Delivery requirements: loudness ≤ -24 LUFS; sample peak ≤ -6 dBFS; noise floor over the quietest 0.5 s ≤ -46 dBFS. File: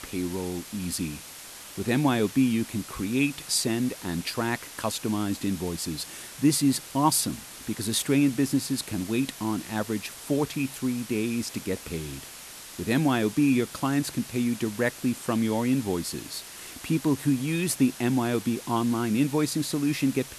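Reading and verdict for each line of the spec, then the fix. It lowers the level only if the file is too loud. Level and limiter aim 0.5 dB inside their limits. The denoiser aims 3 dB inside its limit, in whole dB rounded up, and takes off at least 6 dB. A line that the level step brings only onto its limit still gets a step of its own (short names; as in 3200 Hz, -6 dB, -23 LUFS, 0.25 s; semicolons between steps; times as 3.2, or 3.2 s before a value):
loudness -27.0 LUFS: OK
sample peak -9.0 dBFS: OK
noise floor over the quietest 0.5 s -43 dBFS: fail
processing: denoiser 6 dB, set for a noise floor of -43 dBFS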